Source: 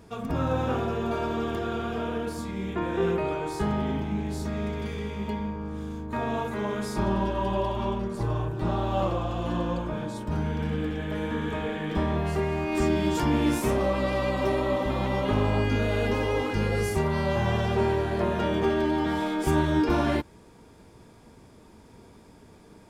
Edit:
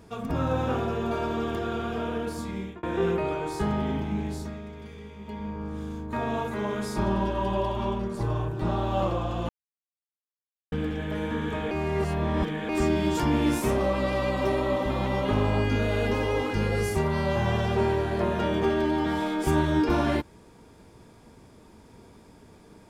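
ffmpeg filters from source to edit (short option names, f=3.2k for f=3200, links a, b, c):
-filter_complex "[0:a]asplit=8[a][b][c][d][e][f][g][h];[a]atrim=end=2.83,asetpts=PTS-STARTPTS,afade=t=out:st=2.56:d=0.27[i];[b]atrim=start=2.83:end=4.62,asetpts=PTS-STARTPTS,afade=t=in:d=0.004:c=hsin,afade=t=out:st=1.42:d=0.37:silence=0.316228[j];[c]atrim=start=4.62:end=5.24,asetpts=PTS-STARTPTS,volume=-10dB[k];[d]atrim=start=5.24:end=9.49,asetpts=PTS-STARTPTS,afade=t=in:d=0.37:silence=0.316228,afade=t=out:st=4.246:d=0.004:c=hsin[l];[e]atrim=start=9.49:end=10.72,asetpts=PTS-STARTPTS,volume=0[m];[f]atrim=start=10.72:end=11.712,asetpts=PTS-STARTPTS,afade=t=in:d=0.004:c=hsin[n];[g]atrim=start=11.708:end=12.692,asetpts=PTS-STARTPTS,areverse[o];[h]atrim=start=12.688[p];[i][j][k][l][m][n]concat=n=6:v=0:a=1[q];[q][o]acrossfade=d=0.004:c1=hsin:c2=hsin[r];[r][p]acrossfade=d=0.004:c1=hsin:c2=hsin"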